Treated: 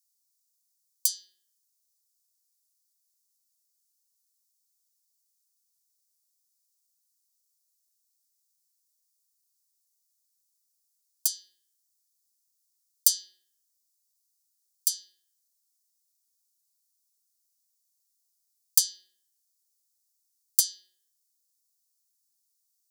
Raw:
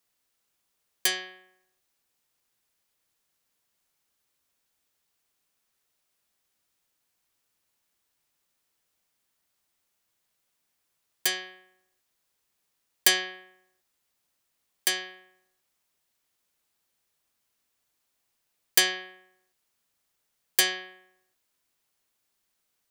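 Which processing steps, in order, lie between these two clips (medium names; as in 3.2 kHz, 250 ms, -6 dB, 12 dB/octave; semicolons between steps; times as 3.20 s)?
inverse Chebyshev high-pass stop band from 2.5 kHz, stop band 40 dB; trim +2.5 dB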